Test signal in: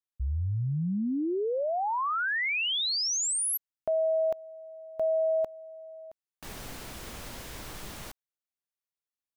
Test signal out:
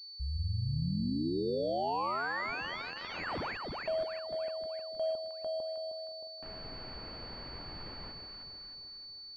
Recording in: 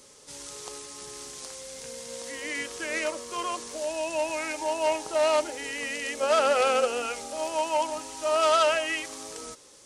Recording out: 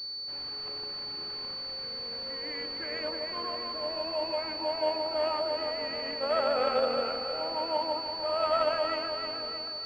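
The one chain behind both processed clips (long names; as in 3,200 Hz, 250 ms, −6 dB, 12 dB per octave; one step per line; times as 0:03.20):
delay that swaps between a low-pass and a high-pass 156 ms, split 1,000 Hz, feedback 73%, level −2.5 dB
amplitude modulation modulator 85 Hz, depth 20%
switching amplifier with a slow clock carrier 4,500 Hz
level −4.5 dB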